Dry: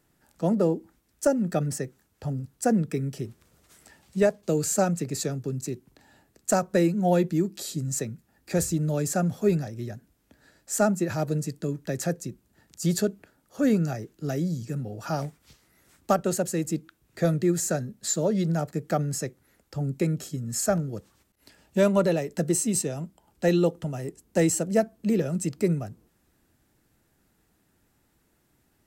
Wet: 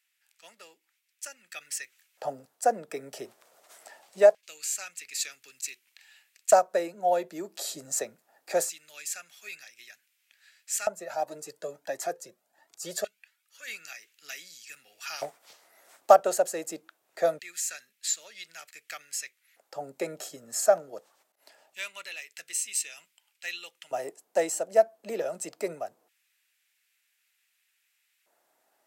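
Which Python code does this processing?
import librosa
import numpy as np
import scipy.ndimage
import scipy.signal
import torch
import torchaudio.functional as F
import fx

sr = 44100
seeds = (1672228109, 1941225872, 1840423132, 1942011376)

y = fx.rider(x, sr, range_db=5, speed_s=0.5)
y = fx.filter_lfo_highpass(y, sr, shape='square', hz=0.23, low_hz=650.0, high_hz=2400.0, q=2.7)
y = fx.comb_cascade(y, sr, direction='rising', hz=1.5, at=(10.87, 13.67), fade=0.02)
y = y * 10.0 ** (-2.0 / 20.0)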